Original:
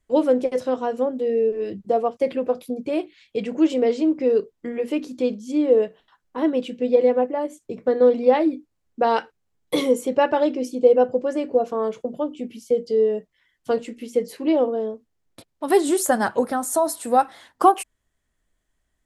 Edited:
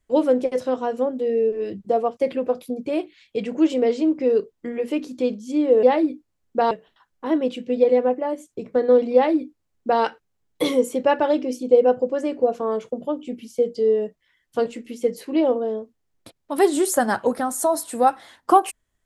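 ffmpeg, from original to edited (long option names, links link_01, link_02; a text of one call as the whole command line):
ffmpeg -i in.wav -filter_complex "[0:a]asplit=3[link_01][link_02][link_03];[link_01]atrim=end=5.832[link_04];[link_02]atrim=start=8.258:end=9.142[link_05];[link_03]atrim=start=5.828[link_06];[link_04][link_05]acrossfade=duration=0.004:curve1=hsin:curve2=hsin[link_07];[link_07][link_06]acrossfade=duration=0.004:curve1=hsin:curve2=hsin" out.wav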